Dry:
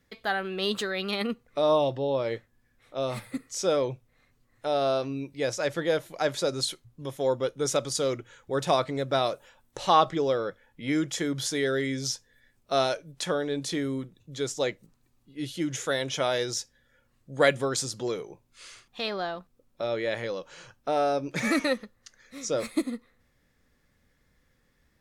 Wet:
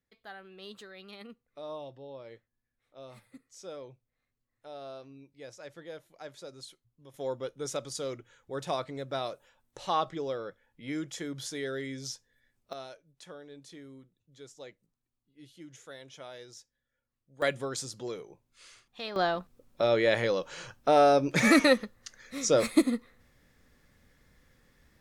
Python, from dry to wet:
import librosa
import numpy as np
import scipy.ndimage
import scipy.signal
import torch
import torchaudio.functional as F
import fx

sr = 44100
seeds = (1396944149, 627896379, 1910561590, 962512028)

y = fx.gain(x, sr, db=fx.steps((0.0, -18.0), (7.14, -8.5), (12.73, -19.0), (17.42, -7.0), (19.16, 4.5)))